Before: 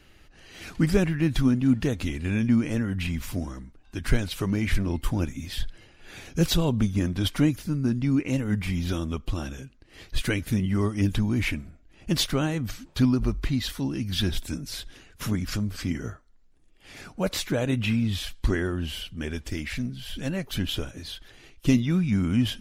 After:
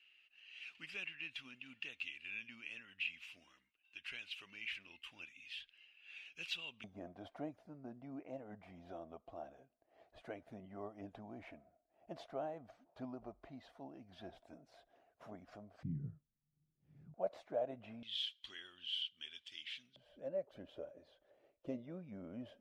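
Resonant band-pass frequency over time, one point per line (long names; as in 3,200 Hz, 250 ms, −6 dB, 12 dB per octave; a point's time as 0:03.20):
resonant band-pass, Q 8.7
2,700 Hz
from 0:06.84 680 Hz
from 0:15.83 150 Hz
from 0:17.14 660 Hz
from 0:18.03 3,200 Hz
from 0:19.96 580 Hz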